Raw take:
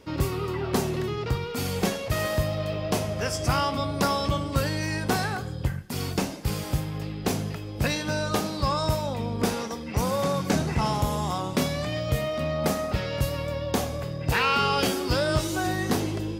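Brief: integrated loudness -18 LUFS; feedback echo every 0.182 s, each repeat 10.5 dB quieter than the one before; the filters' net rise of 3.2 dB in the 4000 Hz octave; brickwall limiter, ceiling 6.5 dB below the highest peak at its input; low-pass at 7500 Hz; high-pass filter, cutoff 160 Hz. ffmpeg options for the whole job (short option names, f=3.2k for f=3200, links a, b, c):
-af "highpass=160,lowpass=7.5k,equalizer=f=4k:t=o:g=4.5,alimiter=limit=-15.5dB:level=0:latency=1,aecho=1:1:182|364|546:0.299|0.0896|0.0269,volume=10dB"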